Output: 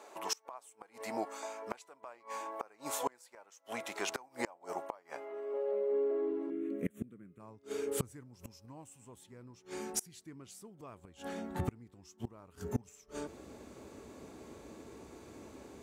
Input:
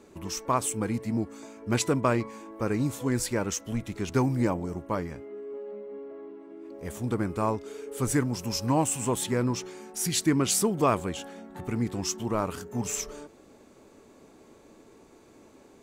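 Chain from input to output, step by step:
high-pass filter sweep 730 Hz → 61 Hz, 0:05.30–0:08.47
gate with flip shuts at −23 dBFS, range −30 dB
0:06.50–0:07.40: phaser with its sweep stopped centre 2,100 Hz, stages 4
level +2.5 dB

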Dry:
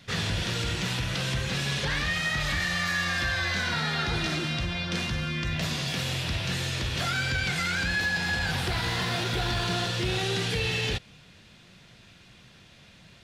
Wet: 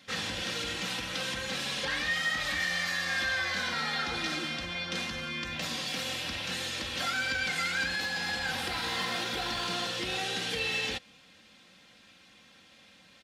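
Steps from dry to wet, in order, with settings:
high-pass filter 280 Hz 6 dB per octave
comb filter 3.8 ms, depth 60%
level −3.5 dB

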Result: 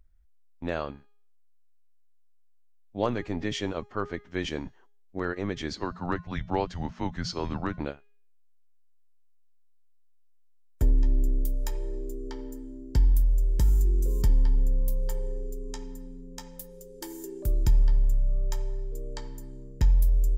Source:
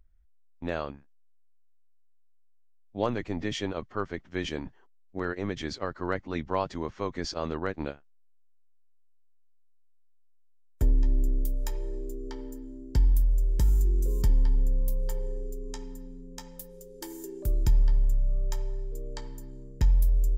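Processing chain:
hum removal 411.2 Hz, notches 25
0:05.77–0:07.80: frequency shifter −180 Hz
level +1 dB

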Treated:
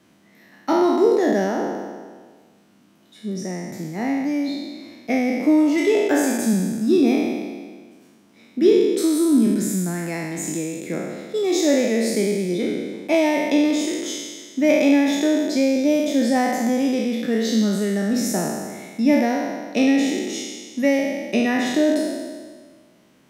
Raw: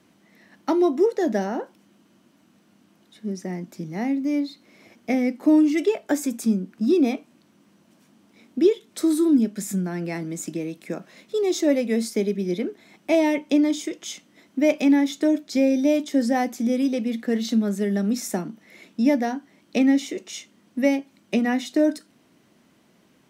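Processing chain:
peak hold with a decay on every bin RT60 1.59 s

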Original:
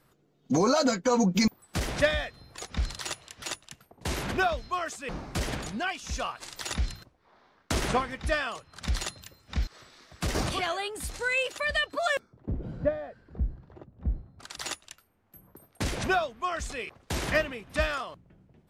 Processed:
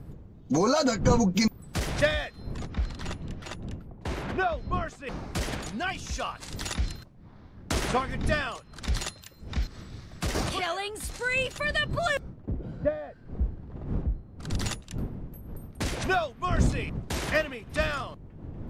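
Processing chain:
wind on the microphone 160 Hz −36 dBFS
0:02.57–0:05.07: low-pass filter 1,800 Hz 6 dB per octave

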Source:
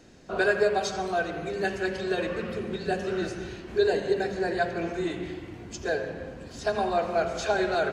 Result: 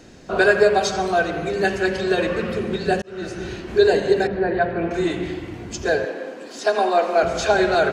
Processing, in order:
0:03.02–0:03.52: fade in
0:04.27–0:04.91: high-frequency loss of the air 410 metres
0:06.05–0:07.23: high-pass filter 270 Hz 24 dB per octave
level +8 dB

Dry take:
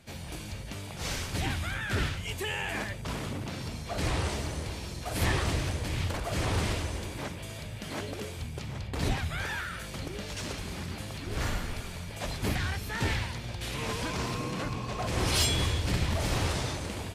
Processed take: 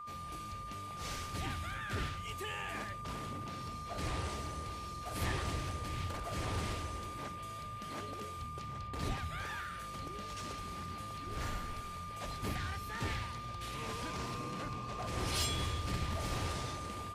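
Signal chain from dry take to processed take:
steady tone 1,200 Hz −35 dBFS
level −8.5 dB

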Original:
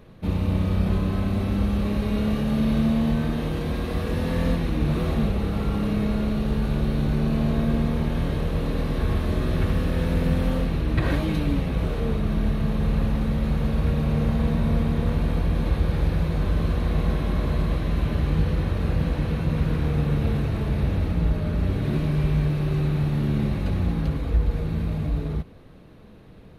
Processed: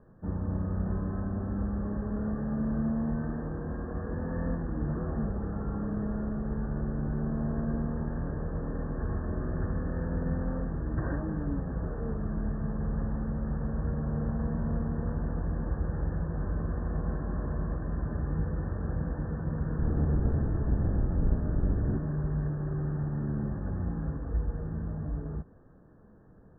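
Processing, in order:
0:19.77–0:21.97: sub-octave generator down 1 octave, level +4 dB
Chebyshev low-pass filter 1,800 Hz, order 10
level −8 dB

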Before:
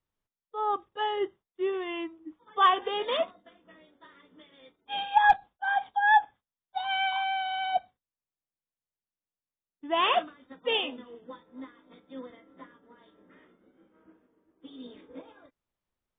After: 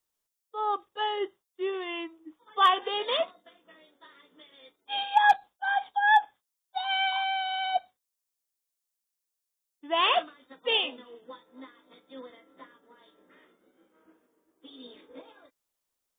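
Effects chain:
bass and treble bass −11 dB, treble +12 dB

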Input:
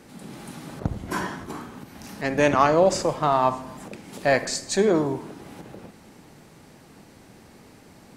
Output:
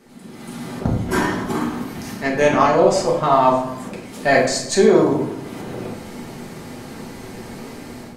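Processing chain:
automatic gain control gain up to 15 dB
convolution reverb RT60 0.75 s, pre-delay 4 ms, DRR −3.5 dB
level −5.5 dB

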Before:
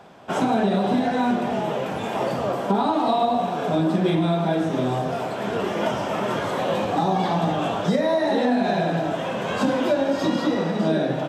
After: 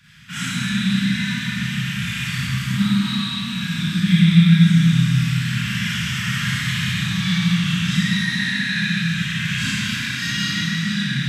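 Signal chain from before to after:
elliptic band-stop filter 160–1,800 Hz, stop band 70 dB
0:02.37–0:04.81: dynamic equaliser 250 Hz, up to +7 dB, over −46 dBFS, Q 1.9
four-comb reverb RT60 2.3 s, combs from 27 ms, DRR −10 dB
level +2 dB

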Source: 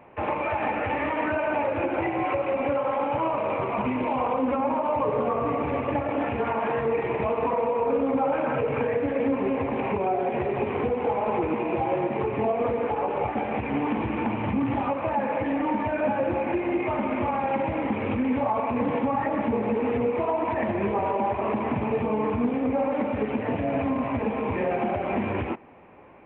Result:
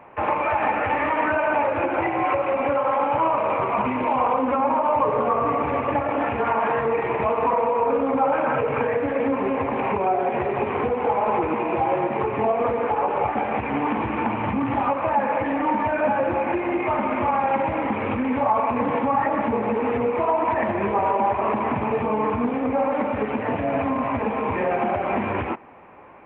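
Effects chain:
parametric band 1,200 Hz +7.5 dB 1.8 octaves

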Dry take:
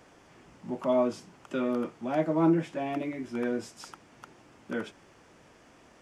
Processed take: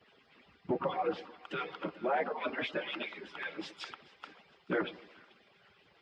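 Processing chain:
harmonic-percussive split with one part muted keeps percussive
treble cut that deepens with the level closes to 1,900 Hz, closed at −35.5 dBFS
drawn EQ curve 860 Hz 0 dB, 3,600 Hz +11 dB, 6,200 Hz −7 dB
brickwall limiter −31 dBFS, peak gain reduction 8 dB
high-pass filter 110 Hz 12 dB per octave
high-shelf EQ 4,200 Hz −11.5 dB
echo with a time of its own for lows and highs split 810 Hz, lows 115 ms, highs 435 ms, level −14.5 dB
hum with harmonics 400 Hz, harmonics 13, −71 dBFS −3 dB per octave
multiband upward and downward expander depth 70%
level +7 dB

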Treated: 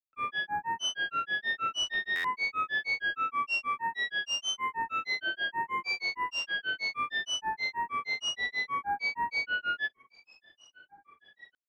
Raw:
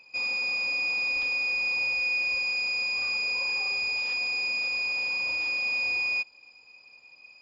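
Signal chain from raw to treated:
granular cloud 100 ms, grains 10 per second, pitch spread up and down by 12 semitones
change of speed 0.634×
buffer that repeats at 0:02.15, samples 512, times 7

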